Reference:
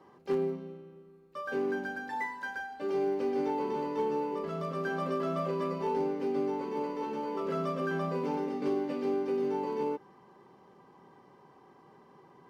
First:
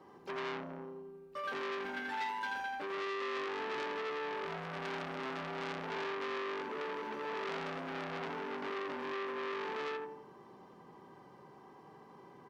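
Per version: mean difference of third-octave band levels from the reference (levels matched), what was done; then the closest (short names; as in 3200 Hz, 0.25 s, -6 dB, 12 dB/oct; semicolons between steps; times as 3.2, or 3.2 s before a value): 7.0 dB: compressor, threshold -34 dBFS, peak gain reduction 8.5 dB; feedback echo 84 ms, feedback 46%, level -4 dB; core saturation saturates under 2600 Hz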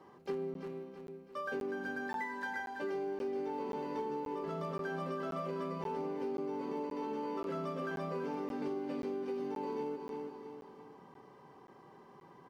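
3.5 dB: on a send: feedback echo 0.331 s, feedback 44%, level -10 dB; on the sum: compressor, threshold -35 dBFS, peak gain reduction 9.5 dB; crackling interface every 0.53 s, samples 512, zero, from 0.54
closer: second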